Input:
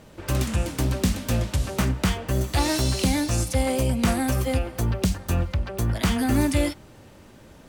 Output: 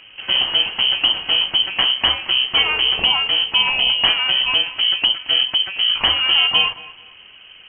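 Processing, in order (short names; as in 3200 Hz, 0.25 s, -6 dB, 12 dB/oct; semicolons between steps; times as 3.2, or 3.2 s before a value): dynamic EQ 2200 Hz, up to +7 dB, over -50 dBFS, Q 4.2; thinning echo 0.225 s, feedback 25%, level -16.5 dB; inverted band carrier 3100 Hz; gain +4.5 dB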